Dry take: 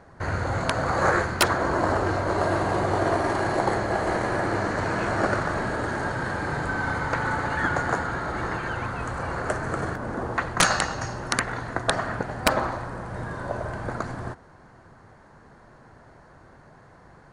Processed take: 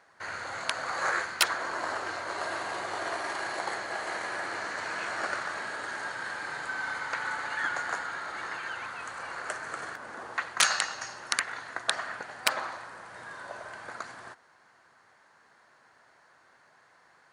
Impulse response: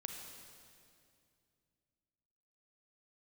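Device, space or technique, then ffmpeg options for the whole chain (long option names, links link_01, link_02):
filter by subtraction: -filter_complex "[0:a]asplit=2[link_01][link_02];[link_02]lowpass=2700,volume=-1[link_03];[link_01][link_03]amix=inputs=2:normalize=0,volume=-2.5dB"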